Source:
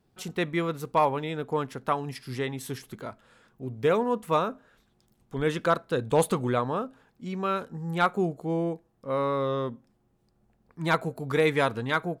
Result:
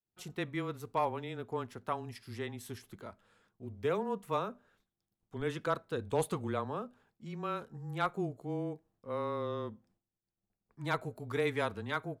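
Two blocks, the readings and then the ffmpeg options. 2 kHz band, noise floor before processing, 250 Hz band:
-9.5 dB, -69 dBFS, -9.0 dB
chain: -af "afreqshift=-17,agate=range=-33dB:threshold=-57dB:ratio=3:detection=peak,volume=-9dB"

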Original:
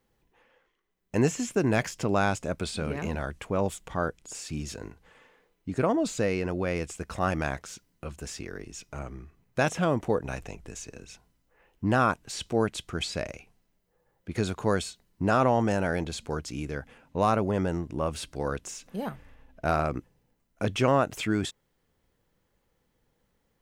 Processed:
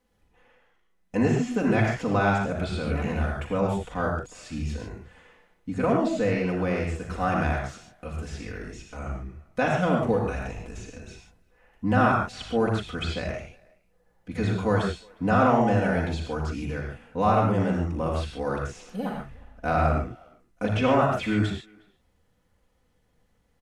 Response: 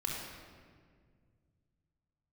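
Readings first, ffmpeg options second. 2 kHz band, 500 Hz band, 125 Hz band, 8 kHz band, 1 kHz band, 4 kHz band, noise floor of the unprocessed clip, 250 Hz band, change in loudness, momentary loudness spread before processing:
+3.0 dB, +2.0 dB, +4.5 dB, -8.0 dB, +3.5 dB, -1.0 dB, -74 dBFS, +3.5 dB, +3.0 dB, 15 LU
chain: -filter_complex "[0:a]acrossover=split=4100[a][b];[b]acompressor=threshold=-52dB:ratio=4:attack=1:release=60[c];[a][c]amix=inputs=2:normalize=0,asplit=2[d][e];[e]adelay=360,highpass=300,lowpass=3.4k,asoftclip=type=hard:threshold=-22dB,volume=-25dB[f];[d][f]amix=inputs=2:normalize=0[g];[1:a]atrim=start_sample=2205,atrim=end_sample=3969,asetrate=25137,aresample=44100[h];[g][h]afir=irnorm=-1:irlink=0,volume=-3dB"

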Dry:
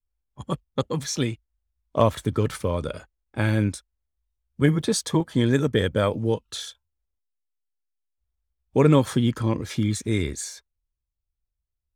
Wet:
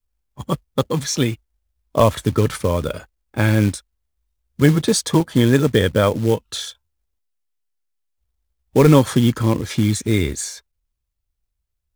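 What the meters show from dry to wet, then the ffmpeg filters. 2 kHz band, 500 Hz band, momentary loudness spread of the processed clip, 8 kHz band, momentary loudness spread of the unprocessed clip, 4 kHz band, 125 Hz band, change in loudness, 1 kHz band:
+6.0 dB, +5.5 dB, 14 LU, +6.5 dB, 14 LU, +6.0 dB, +6.0 dB, +6.0 dB, +5.5 dB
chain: -af "apsyclip=8.5dB,acrusher=bits=5:mode=log:mix=0:aa=0.000001,volume=-2.5dB"

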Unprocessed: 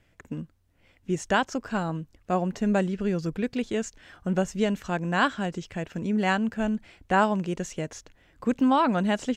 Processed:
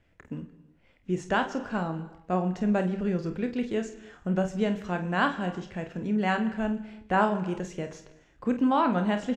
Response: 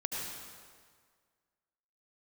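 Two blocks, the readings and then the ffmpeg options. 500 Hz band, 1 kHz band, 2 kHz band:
-1.5 dB, -1.5 dB, -2.5 dB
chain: -filter_complex "[0:a]aemphasis=mode=reproduction:type=50kf,aecho=1:1:28|49:0.316|0.299,asplit=2[a][b];[1:a]atrim=start_sample=2205,afade=t=out:st=0.41:d=0.01,atrim=end_sample=18522[c];[b][c]afir=irnorm=-1:irlink=0,volume=-15dB[d];[a][d]amix=inputs=2:normalize=0,volume=-3.5dB"

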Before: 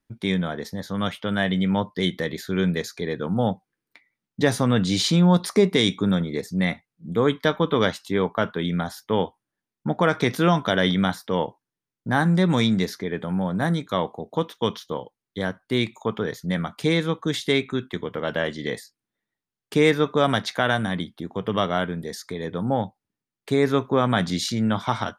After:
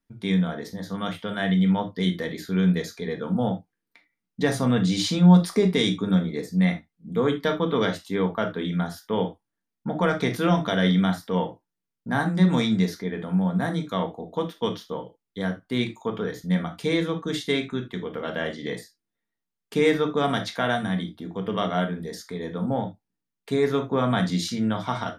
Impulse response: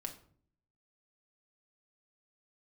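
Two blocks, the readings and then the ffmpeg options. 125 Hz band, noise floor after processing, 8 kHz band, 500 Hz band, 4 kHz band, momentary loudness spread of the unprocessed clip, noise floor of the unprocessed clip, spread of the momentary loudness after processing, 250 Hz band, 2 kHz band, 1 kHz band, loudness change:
0.0 dB, -84 dBFS, -3.5 dB, -2.5 dB, -3.5 dB, 11 LU, under -85 dBFS, 11 LU, 0.0 dB, -3.5 dB, -2.5 dB, -1.0 dB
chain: -filter_complex "[1:a]atrim=start_sample=2205,afade=t=out:st=0.14:d=0.01,atrim=end_sample=6615,asetrate=48510,aresample=44100[a];[0:a][a]afir=irnorm=-1:irlink=0"

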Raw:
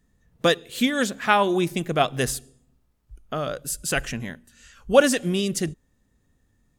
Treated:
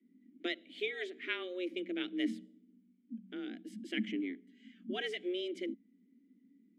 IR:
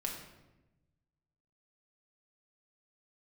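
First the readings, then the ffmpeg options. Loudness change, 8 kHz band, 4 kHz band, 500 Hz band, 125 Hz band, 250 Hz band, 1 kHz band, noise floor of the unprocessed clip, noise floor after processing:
-16.0 dB, under -30 dB, -13.0 dB, -17.5 dB, under -25 dB, -12.0 dB, -27.5 dB, -67 dBFS, -69 dBFS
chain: -filter_complex "[0:a]afreqshift=180,asplit=3[a][b][c];[a]bandpass=f=270:t=q:w=8,volume=0dB[d];[b]bandpass=f=2.29k:t=q:w=8,volume=-6dB[e];[c]bandpass=f=3.01k:t=q:w=8,volume=-9dB[f];[d][e][f]amix=inputs=3:normalize=0,bass=f=250:g=12,treble=f=4k:g=-8,volume=1dB"

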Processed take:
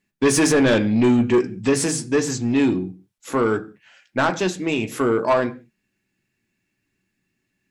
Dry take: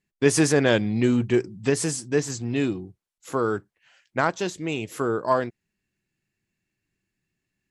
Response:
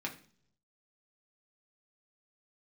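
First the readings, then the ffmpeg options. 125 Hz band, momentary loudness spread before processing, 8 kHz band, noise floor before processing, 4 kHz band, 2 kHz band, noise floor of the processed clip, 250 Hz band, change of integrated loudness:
+1.0 dB, 10 LU, +4.0 dB, -85 dBFS, +3.5 dB, +3.5 dB, -76 dBFS, +5.5 dB, +4.0 dB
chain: -filter_complex "[0:a]asplit=2[a][b];[1:a]atrim=start_sample=2205,afade=t=out:st=0.25:d=0.01,atrim=end_sample=11466[c];[b][c]afir=irnorm=-1:irlink=0,volume=-2.5dB[d];[a][d]amix=inputs=2:normalize=0,asoftclip=type=tanh:threshold=-13dB,volume=2dB"

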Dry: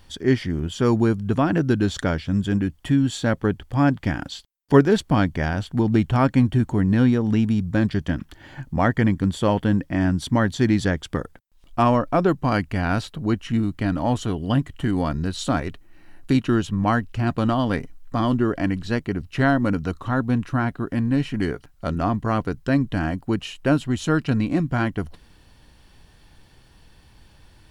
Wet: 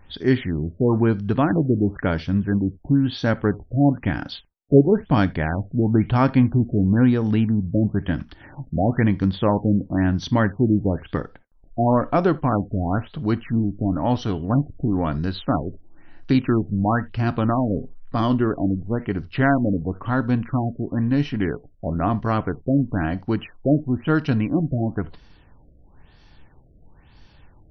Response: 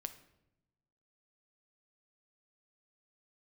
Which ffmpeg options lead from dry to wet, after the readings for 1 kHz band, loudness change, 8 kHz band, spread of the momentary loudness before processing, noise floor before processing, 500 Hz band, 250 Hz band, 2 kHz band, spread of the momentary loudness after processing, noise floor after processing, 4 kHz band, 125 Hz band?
-0.5 dB, +0.5 dB, under -10 dB, 8 LU, -53 dBFS, +0.5 dB, +0.5 dB, -2.0 dB, 8 LU, -52 dBFS, -3.5 dB, +1.0 dB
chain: -filter_complex "[0:a]asplit=2[a][b];[1:a]atrim=start_sample=2205,atrim=end_sample=3969[c];[b][c]afir=irnorm=-1:irlink=0,volume=4.5dB[d];[a][d]amix=inputs=2:normalize=0,afftfilt=real='re*lt(b*sr/1024,680*pow(6300/680,0.5+0.5*sin(2*PI*1*pts/sr)))':imag='im*lt(b*sr/1024,680*pow(6300/680,0.5+0.5*sin(2*PI*1*pts/sr)))':win_size=1024:overlap=0.75,volume=-6dB"

